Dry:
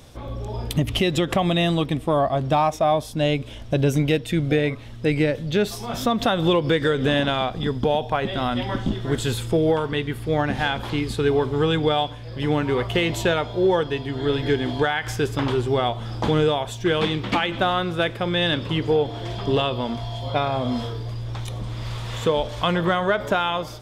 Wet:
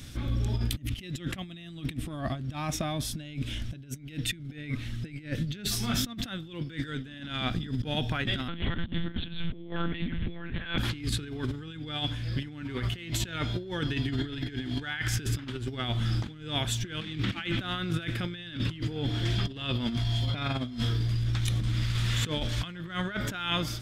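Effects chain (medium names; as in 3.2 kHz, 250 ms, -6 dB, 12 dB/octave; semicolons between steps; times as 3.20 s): high-order bell 670 Hz -14 dB; compressor with a negative ratio -30 dBFS, ratio -0.5; 8.48–10.78 s: monotone LPC vocoder at 8 kHz 170 Hz; trim -1 dB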